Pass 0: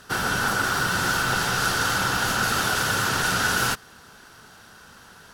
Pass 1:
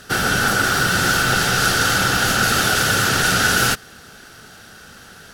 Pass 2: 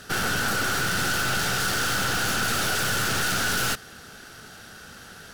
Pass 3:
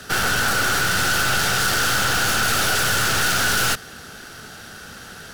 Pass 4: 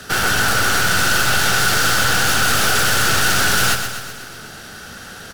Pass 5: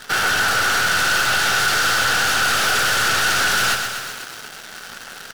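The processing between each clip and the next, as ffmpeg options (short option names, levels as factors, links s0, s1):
-af "equalizer=f=1000:w=4.5:g=-12.5,volume=2.24"
-af "aeval=exprs='(tanh(14.1*val(0)+0.5)-tanh(0.5))/14.1':c=same"
-filter_complex "[0:a]acrossover=split=120|440|5300[s0][s1][s2][s3];[s1]alimiter=level_in=3.55:limit=0.0631:level=0:latency=1,volume=0.282[s4];[s2]acrusher=bits=5:mode=log:mix=0:aa=0.000001[s5];[s0][s4][s5][s3]amix=inputs=4:normalize=0,volume=1.88"
-af "aecho=1:1:125|250|375|500|625|750|875:0.398|0.231|0.134|0.0777|0.0451|0.0261|0.0152,volume=1.33"
-filter_complex "[0:a]acrusher=bits=6:dc=4:mix=0:aa=0.000001,asplit=2[s0][s1];[s1]highpass=f=720:p=1,volume=3.98,asoftclip=type=tanh:threshold=0.708[s2];[s0][s2]amix=inputs=2:normalize=0,lowpass=f=5400:p=1,volume=0.501,volume=0.562"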